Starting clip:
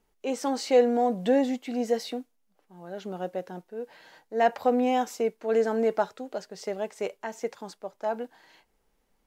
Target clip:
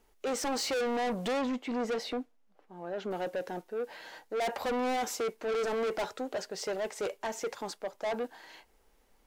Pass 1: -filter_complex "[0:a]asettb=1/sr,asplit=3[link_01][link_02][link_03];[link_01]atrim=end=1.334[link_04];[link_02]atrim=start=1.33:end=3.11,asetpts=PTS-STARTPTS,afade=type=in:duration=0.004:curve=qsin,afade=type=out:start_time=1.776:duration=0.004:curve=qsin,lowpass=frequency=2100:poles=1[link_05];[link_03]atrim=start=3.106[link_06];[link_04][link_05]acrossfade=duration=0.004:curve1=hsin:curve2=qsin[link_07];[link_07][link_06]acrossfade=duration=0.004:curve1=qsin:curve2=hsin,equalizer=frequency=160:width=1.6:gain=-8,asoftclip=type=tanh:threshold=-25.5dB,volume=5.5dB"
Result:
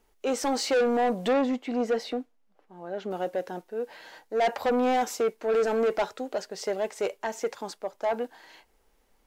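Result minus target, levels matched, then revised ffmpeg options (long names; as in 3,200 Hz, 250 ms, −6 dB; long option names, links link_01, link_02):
soft clipping: distortion −5 dB
-filter_complex "[0:a]asettb=1/sr,asplit=3[link_01][link_02][link_03];[link_01]atrim=end=1.334[link_04];[link_02]atrim=start=1.33:end=3.11,asetpts=PTS-STARTPTS,afade=type=in:duration=0.004:curve=qsin,afade=type=out:start_time=1.776:duration=0.004:curve=qsin,lowpass=frequency=2100:poles=1[link_05];[link_03]atrim=start=3.106[link_06];[link_04][link_05]acrossfade=duration=0.004:curve1=hsin:curve2=qsin[link_07];[link_07][link_06]acrossfade=duration=0.004:curve1=qsin:curve2=hsin,equalizer=frequency=160:width=1.6:gain=-8,asoftclip=type=tanh:threshold=-34.5dB,volume=5.5dB"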